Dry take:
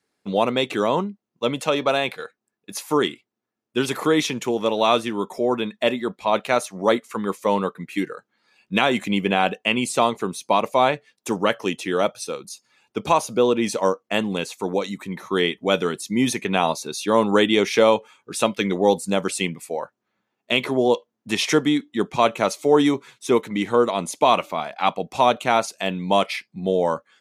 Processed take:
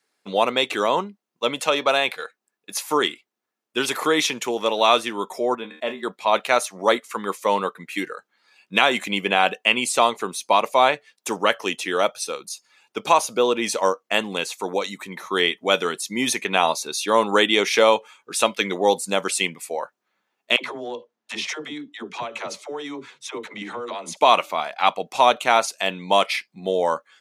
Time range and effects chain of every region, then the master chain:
5.55–6.03 high shelf 2700 Hz -11 dB + resonator 77 Hz, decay 0.23 s, mix 70% + sustainer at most 120 dB/s
20.56–24.17 compressor 12:1, threshold -25 dBFS + air absorption 67 m + dispersion lows, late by 84 ms, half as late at 390 Hz
whole clip: HPF 220 Hz 6 dB/oct; low shelf 420 Hz -10 dB; gain +4 dB

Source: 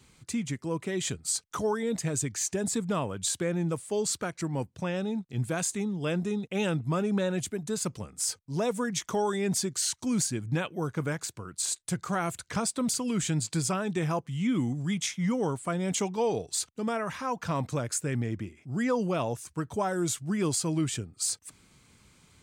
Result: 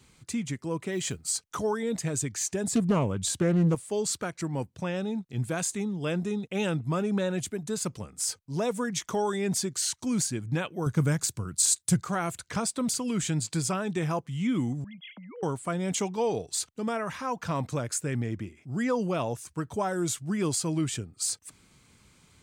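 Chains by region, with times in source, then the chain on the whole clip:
0.92–1.49 notch 3600 Hz, Q 14 + short-mantissa float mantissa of 4-bit
2.72–3.75 low shelf 380 Hz +8.5 dB + Doppler distortion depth 0.26 ms
10.86–12.02 HPF 54 Hz + tone controls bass +10 dB, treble +8 dB
14.84–15.43 sine-wave speech + compressor 16:1, threshold -38 dBFS + HPF 230 Hz
whole clip: dry

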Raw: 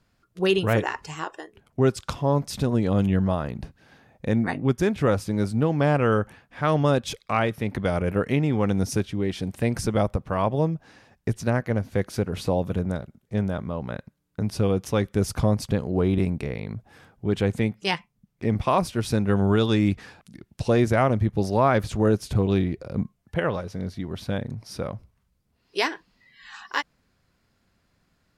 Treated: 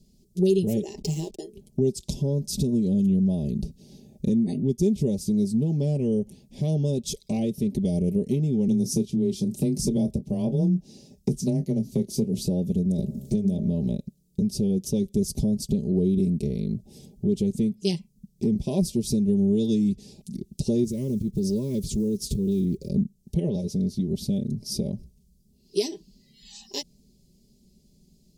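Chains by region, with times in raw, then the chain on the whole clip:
0.97–1.39 backlash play -41 dBFS + three-band squash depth 70%
8.68–12.4 frequency shift +17 Hz + doubler 27 ms -11 dB
12.98–13.96 de-hum 68.4 Hz, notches 17 + three-band squash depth 100%
20.84–22.89 block floating point 7-bit + Butterworth band-stop 740 Hz, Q 1.7 + compressor 4:1, threshold -23 dBFS
whole clip: Chebyshev band-stop 320–5700 Hz, order 2; compressor 2.5:1, threshold -35 dBFS; comb 5 ms, depth 70%; gain +9 dB

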